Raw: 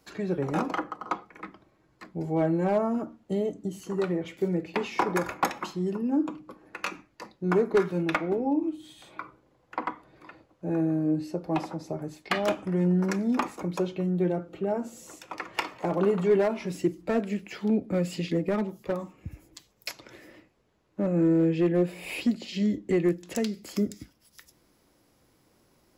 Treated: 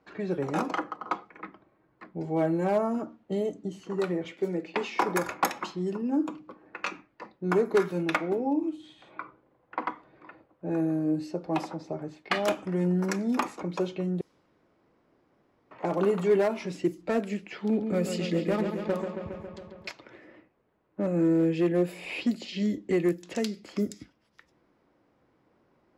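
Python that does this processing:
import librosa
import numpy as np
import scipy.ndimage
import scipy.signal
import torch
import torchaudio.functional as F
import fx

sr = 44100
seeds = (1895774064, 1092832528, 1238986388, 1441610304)

y = fx.highpass(x, sr, hz=200.0, slope=12, at=(4.32, 5.02))
y = fx.echo_wet_lowpass(y, sr, ms=137, feedback_pct=73, hz=3800.0, wet_db=-7, at=(17.59, 19.9))
y = fx.edit(y, sr, fx.room_tone_fill(start_s=14.21, length_s=1.5), tone=tone)
y = fx.low_shelf(y, sr, hz=100.0, db=-11.0)
y = fx.env_lowpass(y, sr, base_hz=1800.0, full_db=-23.0)
y = fx.high_shelf(y, sr, hz=7700.0, db=7.0)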